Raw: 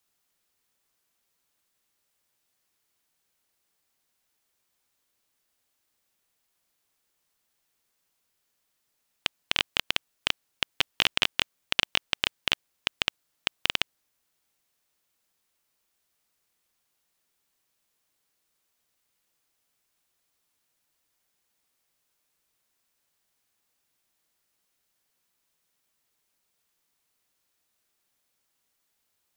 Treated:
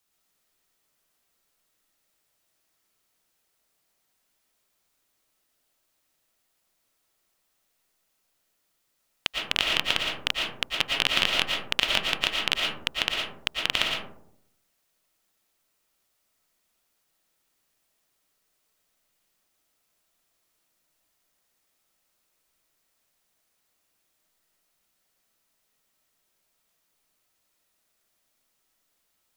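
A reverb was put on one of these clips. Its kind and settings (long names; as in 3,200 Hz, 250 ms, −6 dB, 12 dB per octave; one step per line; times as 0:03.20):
comb and all-pass reverb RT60 0.73 s, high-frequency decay 0.3×, pre-delay 75 ms, DRR −1 dB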